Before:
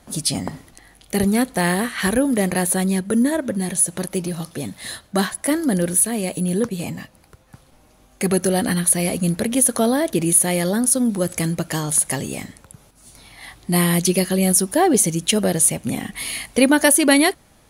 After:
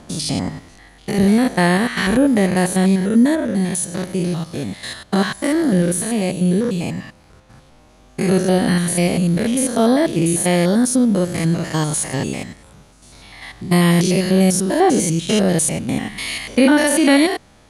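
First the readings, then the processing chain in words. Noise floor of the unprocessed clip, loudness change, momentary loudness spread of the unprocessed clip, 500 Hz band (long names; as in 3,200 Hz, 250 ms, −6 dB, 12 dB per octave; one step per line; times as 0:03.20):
−53 dBFS, +1.5 dB, 11 LU, +3.0 dB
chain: spectrum averaged block by block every 100 ms
low-pass filter 7,300 Hz 12 dB per octave
in parallel at 0 dB: brickwall limiter −12.5 dBFS, peak gain reduction 8 dB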